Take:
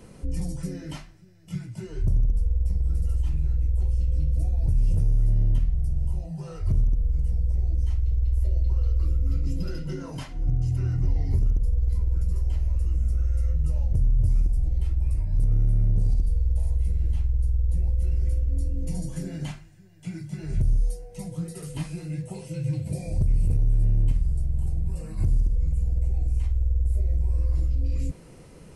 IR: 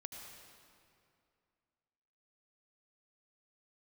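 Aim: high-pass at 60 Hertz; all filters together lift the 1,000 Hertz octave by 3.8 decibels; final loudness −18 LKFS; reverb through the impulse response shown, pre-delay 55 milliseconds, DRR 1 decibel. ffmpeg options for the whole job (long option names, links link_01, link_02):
-filter_complex "[0:a]highpass=60,equalizer=frequency=1000:width_type=o:gain=5,asplit=2[link_01][link_02];[1:a]atrim=start_sample=2205,adelay=55[link_03];[link_02][link_03]afir=irnorm=-1:irlink=0,volume=2.5dB[link_04];[link_01][link_04]amix=inputs=2:normalize=0,volume=10dB"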